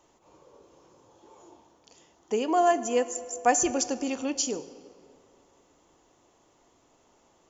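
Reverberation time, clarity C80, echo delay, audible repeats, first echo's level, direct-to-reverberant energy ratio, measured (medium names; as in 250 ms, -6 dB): 2.5 s, 15.5 dB, no echo, no echo, no echo, 11.5 dB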